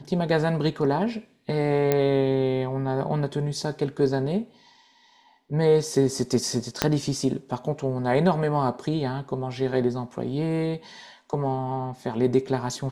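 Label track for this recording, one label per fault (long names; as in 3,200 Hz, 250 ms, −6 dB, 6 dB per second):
1.920000	1.920000	click −8 dBFS
6.820000	6.820000	click −4 dBFS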